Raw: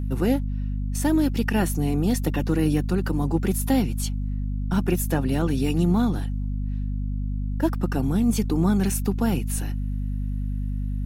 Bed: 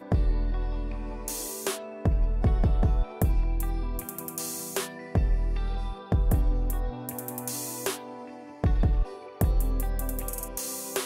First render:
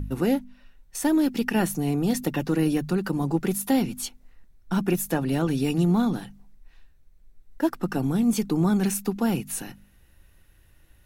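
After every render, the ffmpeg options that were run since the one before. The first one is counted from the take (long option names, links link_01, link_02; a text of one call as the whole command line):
ffmpeg -i in.wav -af "bandreject=frequency=50:width_type=h:width=4,bandreject=frequency=100:width_type=h:width=4,bandreject=frequency=150:width_type=h:width=4,bandreject=frequency=200:width_type=h:width=4,bandreject=frequency=250:width_type=h:width=4" out.wav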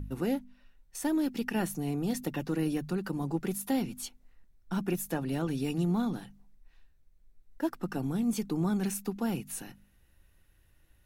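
ffmpeg -i in.wav -af "volume=-7.5dB" out.wav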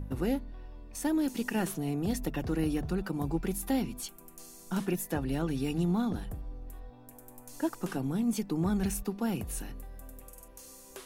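ffmpeg -i in.wav -i bed.wav -filter_complex "[1:a]volume=-16.5dB[link_01];[0:a][link_01]amix=inputs=2:normalize=0" out.wav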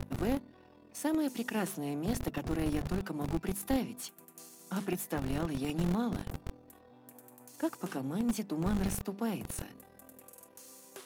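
ffmpeg -i in.wav -filter_complex "[0:a]aeval=exprs='if(lt(val(0),0),0.447*val(0),val(0))':channel_layout=same,acrossover=split=110[link_01][link_02];[link_01]acrusher=bits=5:mix=0:aa=0.000001[link_03];[link_03][link_02]amix=inputs=2:normalize=0" out.wav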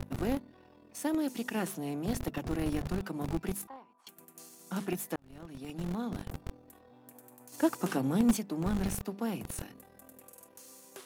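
ffmpeg -i in.wav -filter_complex "[0:a]asettb=1/sr,asplit=3[link_01][link_02][link_03];[link_01]atrim=end=3.674[link_04];[link_02]atrim=start=3.67:end=4.07,asetpts=PTS-STARTPTS,afade=type=in:duration=0.004:curve=qsin,afade=type=out:start_time=0.396:duration=0.004:curve=qsin,bandpass=frequency=1000:width_type=q:width=5.5[link_05];[link_03]atrim=start=4.066[link_06];[link_04][link_05]acrossfade=duration=0.004:curve1=hsin:curve2=qsin[link_07];[link_07][link_06]acrossfade=duration=0.004:curve1=qsin:curve2=hsin,asettb=1/sr,asplit=3[link_08][link_09][link_10];[link_08]atrim=end=7.524[link_11];[link_09]atrim=start=7.52:end=8.37,asetpts=PTS-STARTPTS,afade=type=in:duration=0.004:curve=qsin,afade=type=out:start_time=0.846:duration=0.004:curve=qsin,acontrast=54[link_12];[link_10]atrim=start=8.366[link_13];[link_11][link_12]acrossfade=duration=0.004:curve1=hsin:curve2=qsin[link_14];[link_14][link_13]acrossfade=duration=0.004:curve1=qsin:curve2=hsin,asplit=2[link_15][link_16];[link_15]atrim=end=5.16,asetpts=PTS-STARTPTS,afade=type=out:start_time=5.156:duration=0.004:curve=hsin[link_17];[link_16]atrim=start=5.16,asetpts=PTS-STARTPTS,afade=type=in:duration=1.27[link_18];[link_17][link_18]concat=n=2:v=0:a=1" out.wav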